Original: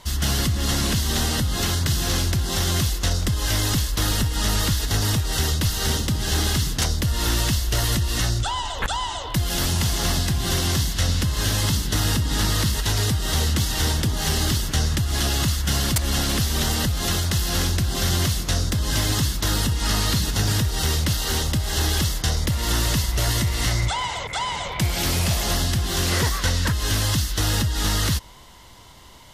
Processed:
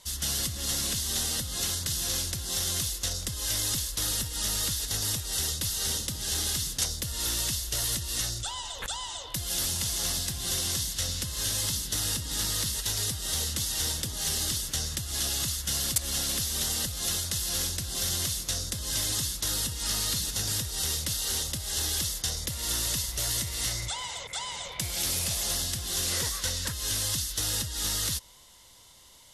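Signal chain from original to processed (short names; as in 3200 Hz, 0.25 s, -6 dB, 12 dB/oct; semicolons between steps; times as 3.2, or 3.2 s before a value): elliptic low-pass 12000 Hz, stop band 50 dB; pre-emphasis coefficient 0.8; small resonant body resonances 520/3600 Hz, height 6 dB, ringing for 25 ms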